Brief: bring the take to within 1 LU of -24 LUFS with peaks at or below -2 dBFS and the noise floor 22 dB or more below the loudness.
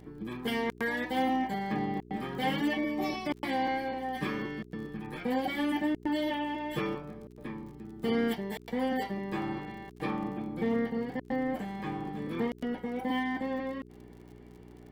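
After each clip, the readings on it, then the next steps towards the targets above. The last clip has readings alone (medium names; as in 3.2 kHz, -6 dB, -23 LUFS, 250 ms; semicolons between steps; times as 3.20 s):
tick rate 48 per s; hum 60 Hz; highest harmonic 420 Hz; hum level -50 dBFS; loudness -33.0 LUFS; peak level -18.0 dBFS; loudness target -24.0 LUFS
-> de-click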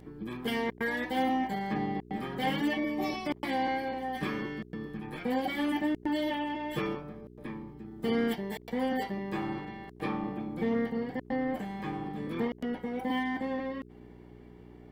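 tick rate 0.34 per s; hum 60 Hz; highest harmonic 420 Hz; hum level -51 dBFS
-> de-hum 60 Hz, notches 7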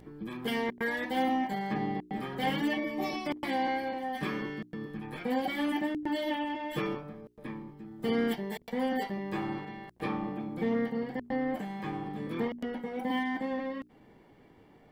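hum not found; loudness -33.5 LUFS; peak level -18.5 dBFS; loudness target -24.0 LUFS
-> trim +9.5 dB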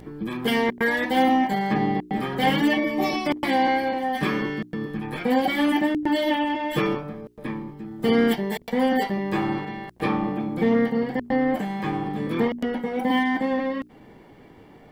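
loudness -24.0 LUFS; peak level -9.0 dBFS; noise floor -49 dBFS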